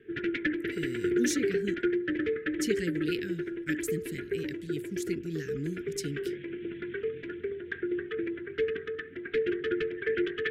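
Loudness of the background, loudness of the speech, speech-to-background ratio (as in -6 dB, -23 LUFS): -33.0 LUFS, -37.0 LUFS, -4.0 dB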